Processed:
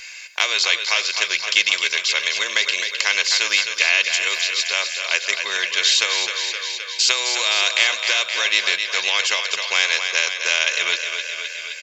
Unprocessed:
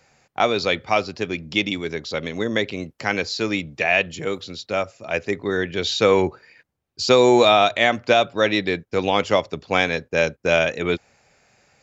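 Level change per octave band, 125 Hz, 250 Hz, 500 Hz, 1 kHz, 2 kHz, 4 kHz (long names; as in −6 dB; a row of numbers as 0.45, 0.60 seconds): below −30 dB, below −20 dB, −14.5 dB, −7.5 dB, +5.5 dB, +9.0 dB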